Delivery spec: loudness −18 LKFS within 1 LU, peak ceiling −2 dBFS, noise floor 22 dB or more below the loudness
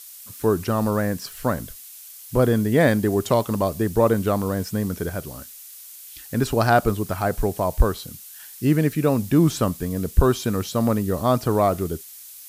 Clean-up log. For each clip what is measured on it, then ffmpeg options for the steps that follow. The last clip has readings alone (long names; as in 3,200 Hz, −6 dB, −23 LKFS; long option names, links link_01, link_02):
background noise floor −42 dBFS; target noise floor −44 dBFS; integrated loudness −22.0 LKFS; sample peak −4.5 dBFS; target loudness −18.0 LKFS
→ -af "afftdn=noise_reduction=6:noise_floor=-42"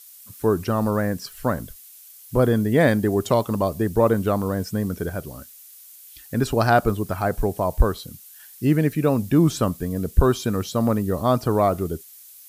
background noise floor −46 dBFS; integrated loudness −22.0 LKFS; sample peak −4.5 dBFS; target loudness −18.0 LKFS
→ -af "volume=4dB,alimiter=limit=-2dB:level=0:latency=1"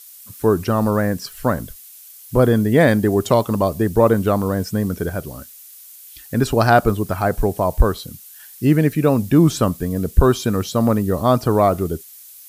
integrated loudness −18.0 LKFS; sample peak −2.0 dBFS; background noise floor −42 dBFS